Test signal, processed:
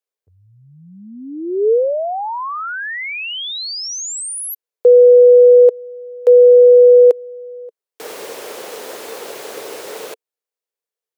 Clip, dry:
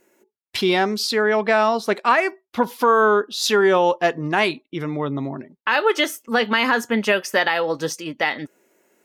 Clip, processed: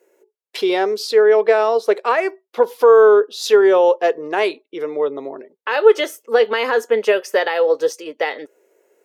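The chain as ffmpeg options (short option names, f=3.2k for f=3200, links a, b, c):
-af "highpass=f=450:t=q:w=4.9,volume=-3.5dB"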